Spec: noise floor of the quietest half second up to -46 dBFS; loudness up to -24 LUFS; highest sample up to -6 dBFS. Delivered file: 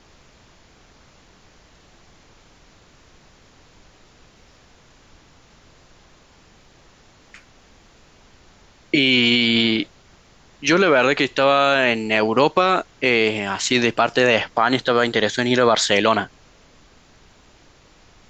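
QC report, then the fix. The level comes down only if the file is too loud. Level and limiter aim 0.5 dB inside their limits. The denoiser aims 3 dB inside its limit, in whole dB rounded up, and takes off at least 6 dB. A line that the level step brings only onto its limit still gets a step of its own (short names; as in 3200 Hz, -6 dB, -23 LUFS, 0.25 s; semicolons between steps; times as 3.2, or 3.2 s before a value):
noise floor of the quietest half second -52 dBFS: OK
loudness -17.5 LUFS: fail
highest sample -5.0 dBFS: fail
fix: gain -7 dB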